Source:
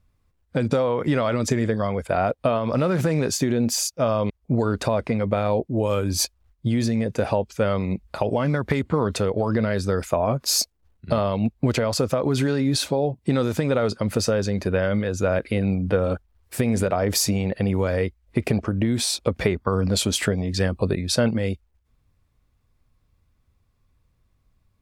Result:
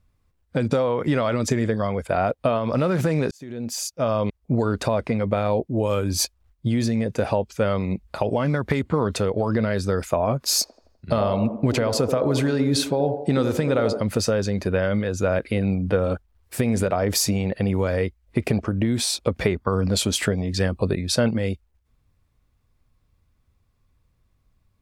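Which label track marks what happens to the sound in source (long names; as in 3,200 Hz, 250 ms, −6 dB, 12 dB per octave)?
3.310000	4.160000	fade in
10.410000	14.010000	delay with a band-pass on its return 84 ms, feedback 50%, band-pass 490 Hz, level −5 dB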